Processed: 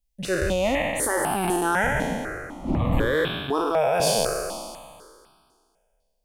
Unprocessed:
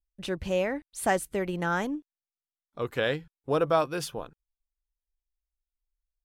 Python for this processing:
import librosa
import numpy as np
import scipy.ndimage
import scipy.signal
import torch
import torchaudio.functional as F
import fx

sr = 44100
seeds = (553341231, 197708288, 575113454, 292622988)

p1 = fx.spec_trails(x, sr, decay_s=2.01)
p2 = fx.dmg_wind(p1, sr, seeds[0], corner_hz=290.0, level_db=-29.0, at=(1.83, 3.14), fade=0.02)
p3 = fx.over_compress(p2, sr, threshold_db=-26.0, ratio=-0.5)
p4 = p2 + F.gain(torch.from_numpy(p3), 0.5).numpy()
y = fx.phaser_held(p4, sr, hz=4.0, low_hz=340.0, high_hz=1900.0)